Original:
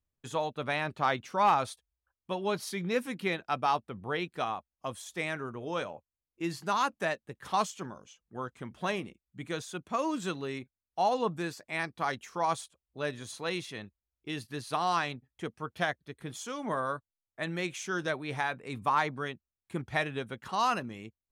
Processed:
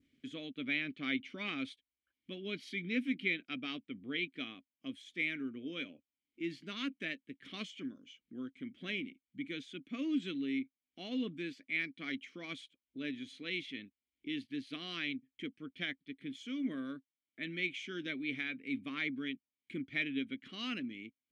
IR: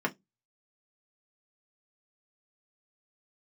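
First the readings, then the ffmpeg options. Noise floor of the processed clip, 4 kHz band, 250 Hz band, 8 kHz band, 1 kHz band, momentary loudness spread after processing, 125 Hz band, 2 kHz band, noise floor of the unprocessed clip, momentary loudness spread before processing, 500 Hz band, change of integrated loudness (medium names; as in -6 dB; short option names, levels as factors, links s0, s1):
under -85 dBFS, -2.0 dB, 0.0 dB, under -15 dB, -25.0 dB, 11 LU, -11.0 dB, -3.0 dB, under -85 dBFS, 13 LU, -13.5 dB, -6.5 dB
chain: -filter_complex "[0:a]acompressor=mode=upward:threshold=0.00891:ratio=2.5,adynamicequalizer=threshold=0.00631:dfrequency=2900:dqfactor=1.1:tfrequency=2900:tqfactor=1.1:attack=5:release=100:ratio=0.375:range=2.5:mode=boostabove:tftype=bell,asplit=3[s0][s1][s2];[s0]bandpass=f=270:t=q:w=8,volume=1[s3];[s1]bandpass=f=2290:t=q:w=8,volume=0.501[s4];[s2]bandpass=f=3010:t=q:w=8,volume=0.355[s5];[s3][s4][s5]amix=inputs=3:normalize=0,volume=2.24"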